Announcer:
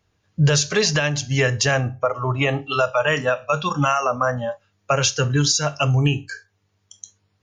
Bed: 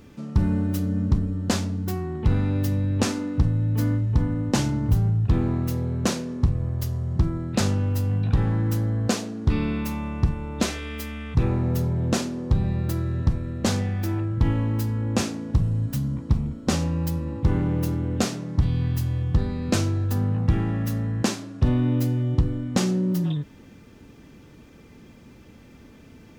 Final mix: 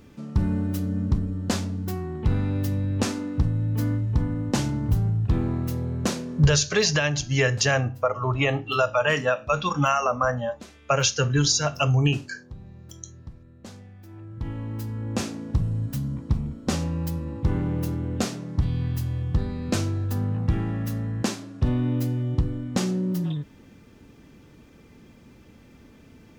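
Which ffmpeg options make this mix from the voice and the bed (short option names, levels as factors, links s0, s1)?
-filter_complex "[0:a]adelay=6000,volume=0.75[s0];[1:a]volume=5.96,afade=t=out:st=6.38:d=0.28:silence=0.125893,afade=t=in:st=14.07:d=1.35:silence=0.133352[s1];[s0][s1]amix=inputs=2:normalize=0"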